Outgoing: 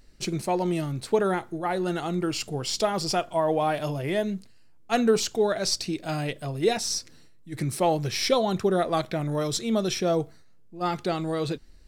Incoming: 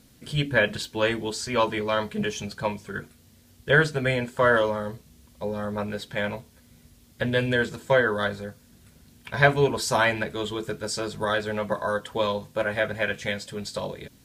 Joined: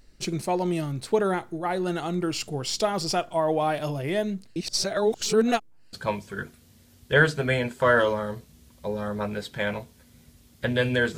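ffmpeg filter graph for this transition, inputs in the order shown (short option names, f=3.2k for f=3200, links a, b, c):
-filter_complex "[0:a]apad=whole_dur=11.17,atrim=end=11.17,asplit=2[a][b];[a]atrim=end=4.562[c];[b]atrim=start=4.558:end=5.932,asetpts=PTS-STARTPTS,areverse[d];[1:a]atrim=start=2.498:end=7.74[e];[c][d]acrossfade=d=0.004:c1=hsin:c2=hsin[f];[f][e]acrossfade=d=0.004:c1=hsin:c2=hsin"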